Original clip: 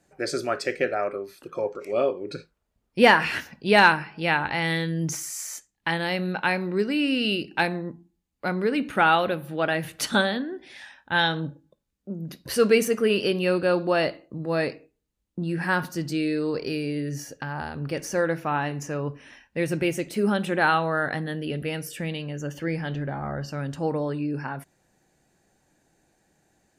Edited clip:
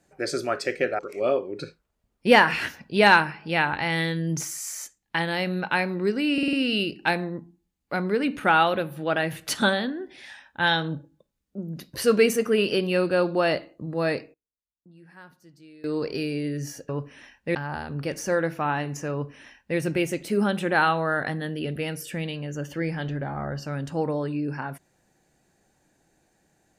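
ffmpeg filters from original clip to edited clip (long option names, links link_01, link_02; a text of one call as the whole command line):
ffmpeg -i in.wav -filter_complex "[0:a]asplit=10[link_01][link_02][link_03][link_04][link_05][link_06][link_07][link_08][link_09][link_10];[link_01]atrim=end=0.992[link_11];[link_02]atrim=start=1.708:end=7.102[link_12];[link_03]atrim=start=7.048:end=7.102[link_13];[link_04]atrim=start=7.048:end=7.102[link_14];[link_05]atrim=start=7.048:end=7.102[link_15];[link_06]atrim=start=7.048:end=14.86,asetpts=PTS-STARTPTS,afade=type=out:start_time=7.552:duration=0.26:curve=log:silence=0.0668344[link_16];[link_07]atrim=start=14.86:end=16.36,asetpts=PTS-STARTPTS,volume=-23.5dB[link_17];[link_08]atrim=start=16.36:end=17.412,asetpts=PTS-STARTPTS,afade=type=in:duration=0.26:curve=log:silence=0.0668344[link_18];[link_09]atrim=start=18.978:end=19.642[link_19];[link_10]atrim=start=17.408[link_20];[link_11][link_12]acrossfade=duration=0.004:curve1=hsin:curve2=hsin[link_21];[link_21][link_13]acrossfade=duration=0.004:curve1=hsin:curve2=hsin[link_22];[link_22][link_14]acrossfade=duration=0.004:curve1=hsin:curve2=hsin[link_23];[link_23][link_15]acrossfade=duration=0.004:curve1=hsin:curve2=hsin[link_24];[link_16][link_17][link_18]concat=n=3:v=0:a=1[link_25];[link_24][link_25]acrossfade=duration=0.004:curve1=hsin:curve2=hsin[link_26];[link_26][link_19]acrossfade=duration=0.004:curve1=hsin:curve2=hsin[link_27];[link_27][link_20]acrossfade=duration=0.004:curve1=hsin:curve2=hsin" out.wav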